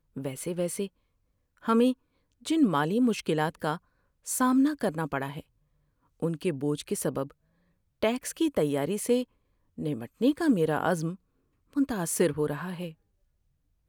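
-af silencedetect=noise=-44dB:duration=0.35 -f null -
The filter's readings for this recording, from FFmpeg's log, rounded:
silence_start: 0.87
silence_end: 1.63 | silence_duration: 0.76
silence_start: 1.93
silence_end: 2.45 | silence_duration: 0.52
silence_start: 3.78
silence_end: 4.26 | silence_duration: 0.49
silence_start: 5.40
silence_end: 6.22 | silence_duration: 0.82
silence_start: 7.31
silence_end: 8.03 | silence_duration: 0.71
silence_start: 9.24
silence_end: 9.78 | silence_duration: 0.54
silence_start: 11.15
silence_end: 11.73 | silence_duration: 0.58
silence_start: 12.92
silence_end: 13.89 | silence_duration: 0.97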